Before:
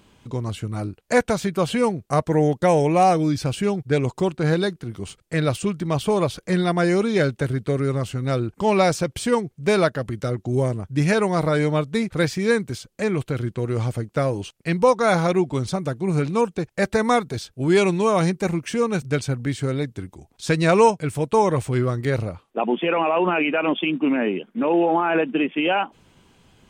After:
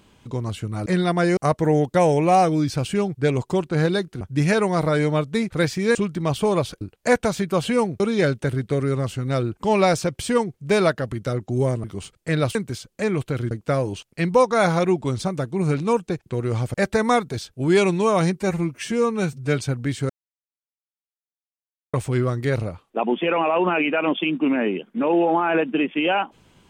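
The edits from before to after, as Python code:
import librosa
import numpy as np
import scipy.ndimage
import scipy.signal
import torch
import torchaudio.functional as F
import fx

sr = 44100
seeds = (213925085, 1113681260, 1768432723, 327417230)

y = fx.edit(x, sr, fx.swap(start_s=0.86, length_s=1.19, other_s=6.46, other_length_s=0.51),
    fx.swap(start_s=4.89, length_s=0.71, other_s=10.81, other_length_s=1.74),
    fx.move(start_s=13.51, length_s=0.48, to_s=16.74),
    fx.stretch_span(start_s=18.4, length_s=0.79, factor=1.5),
    fx.silence(start_s=19.7, length_s=1.84), tone=tone)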